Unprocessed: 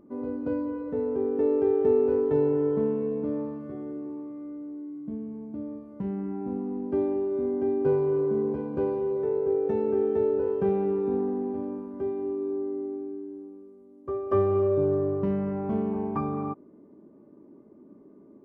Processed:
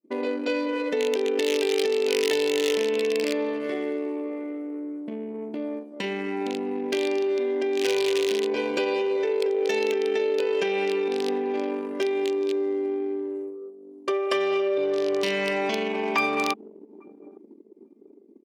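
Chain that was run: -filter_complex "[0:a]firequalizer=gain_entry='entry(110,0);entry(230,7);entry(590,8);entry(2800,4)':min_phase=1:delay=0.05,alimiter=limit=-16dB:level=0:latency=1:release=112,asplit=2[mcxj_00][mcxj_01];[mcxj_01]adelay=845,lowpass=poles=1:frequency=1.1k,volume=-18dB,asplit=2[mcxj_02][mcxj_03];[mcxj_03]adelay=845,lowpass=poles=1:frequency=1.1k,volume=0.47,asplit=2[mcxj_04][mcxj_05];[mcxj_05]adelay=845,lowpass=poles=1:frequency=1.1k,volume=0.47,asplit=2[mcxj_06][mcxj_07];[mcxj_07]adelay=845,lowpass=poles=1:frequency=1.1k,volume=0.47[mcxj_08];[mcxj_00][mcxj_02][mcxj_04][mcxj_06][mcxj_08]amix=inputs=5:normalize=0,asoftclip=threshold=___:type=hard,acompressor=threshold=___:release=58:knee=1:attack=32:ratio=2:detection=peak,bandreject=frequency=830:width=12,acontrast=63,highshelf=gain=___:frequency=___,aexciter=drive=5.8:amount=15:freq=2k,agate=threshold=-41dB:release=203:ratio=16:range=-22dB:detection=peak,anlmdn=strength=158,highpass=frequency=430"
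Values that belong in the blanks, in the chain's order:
-16dB, -32dB, 10, 2.2k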